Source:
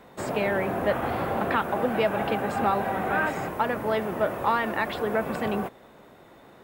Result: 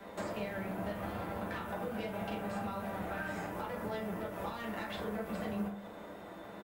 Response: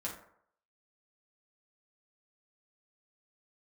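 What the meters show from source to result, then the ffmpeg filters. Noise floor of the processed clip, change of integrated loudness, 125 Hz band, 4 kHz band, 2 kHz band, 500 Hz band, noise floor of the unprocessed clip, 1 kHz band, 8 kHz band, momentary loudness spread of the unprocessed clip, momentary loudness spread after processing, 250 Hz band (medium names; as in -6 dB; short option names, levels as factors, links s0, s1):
-49 dBFS, -13.0 dB, -8.0 dB, -10.5 dB, -13.5 dB, -13.5 dB, -52 dBFS, -14.5 dB, -9.0 dB, 3 LU, 2 LU, -8.5 dB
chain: -filter_complex "[0:a]bandreject=f=50:t=h:w=6,bandreject=f=100:t=h:w=6,bandreject=f=150:t=h:w=6,bandreject=f=200:t=h:w=6,acrossover=split=180|3000[s0][s1][s2];[s1]acompressor=threshold=0.02:ratio=6[s3];[s0][s3][s2]amix=inputs=3:normalize=0,acrossover=split=270|5200[s4][s5][s6];[s6]alimiter=level_in=11.9:limit=0.0631:level=0:latency=1,volume=0.0841[s7];[s4][s5][s7]amix=inputs=3:normalize=0,acompressor=threshold=0.01:ratio=12,asplit=2[s8][s9];[s9]acrusher=bits=5:mix=0:aa=0.5,volume=0.398[s10];[s8][s10]amix=inputs=2:normalize=0,asplit=2[s11][s12];[s12]adelay=34,volume=0.237[s13];[s11][s13]amix=inputs=2:normalize=0[s14];[1:a]atrim=start_sample=2205[s15];[s14][s15]afir=irnorm=-1:irlink=0,volume=1.19"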